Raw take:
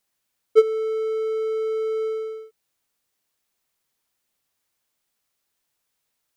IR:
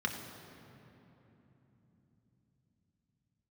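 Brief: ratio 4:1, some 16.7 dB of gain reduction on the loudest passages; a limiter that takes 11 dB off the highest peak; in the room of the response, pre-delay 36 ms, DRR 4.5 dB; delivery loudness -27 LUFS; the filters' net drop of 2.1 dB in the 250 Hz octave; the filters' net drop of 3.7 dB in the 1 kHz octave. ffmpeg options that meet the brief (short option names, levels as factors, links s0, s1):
-filter_complex "[0:a]equalizer=f=250:t=o:g=-4.5,equalizer=f=1000:t=o:g=-6,acompressor=threshold=0.0251:ratio=4,alimiter=level_in=2.66:limit=0.0631:level=0:latency=1,volume=0.376,asplit=2[s0][s1];[1:a]atrim=start_sample=2205,adelay=36[s2];[s1][s2]afir=irnorm=-1:irlink=0,volume=0.316[s3];[s0][s3]amix=inputs=2:normalize=0,volume=5.31"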